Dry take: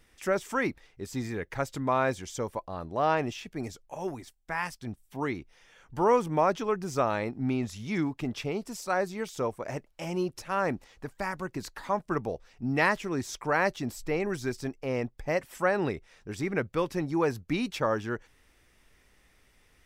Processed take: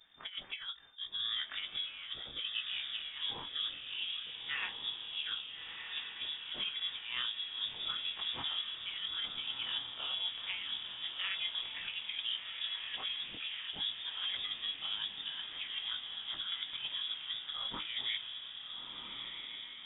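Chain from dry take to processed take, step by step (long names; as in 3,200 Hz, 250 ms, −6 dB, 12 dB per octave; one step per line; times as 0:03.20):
every overlapping window played backwards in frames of 53 ms
compressor whose output falls as the input rises −35 dBFS, ratio −0.5
flanger 0.14 Hz, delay 9.9 ms, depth 5.1 ms, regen −62%
feedback delay with all-pass diffusion 1,354 ms, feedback 57%, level −5.5 dB
voice inversion scrambler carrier 3,600 Hz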